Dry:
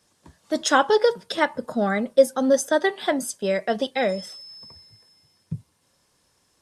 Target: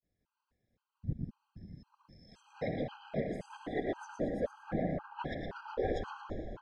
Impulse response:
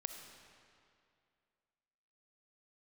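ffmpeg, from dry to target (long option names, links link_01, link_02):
-filter_complex "[0:a]areverse,acompressor=threshold=-32dB:ratio=2,lowshelf=frequency=420:gain=4,aecho=1:1:114|228|342|456|570:0.501|0.216|0.0927|0.0398|0.0171,asoftclip=type=hard:threshold=-21dB,lowpass=2700,lowshelf=frequency=110:gain=12,agate=range=-33dB:threshold=-55dB:ratio=3:detection=peak[link_01];[1:a]atrim=start_sample=2205,asetrate=32634,aresample=44100[link_02];[link_01][link_02]afir=irnorm=-1:irlink=0,afftfilt=real='hypot(re,im)*cos(2*PI*random(0))':imag='hypot(re,im)*sin(2*PI*random(1))':win_size=512:overlap=0.75,afftfilt=real='re*gt(sin(2*PI*1.9*pts/sr)*(1-2*mod(floor(b*sr/1024/810),2)),0)':imag='im*gt(sin(2*PI*1.9*pts/sr)*(1-2*mod(floor(b*sr/1024/810),2)),0)':win_size=1024:overlap=0.75,volume=-1dB"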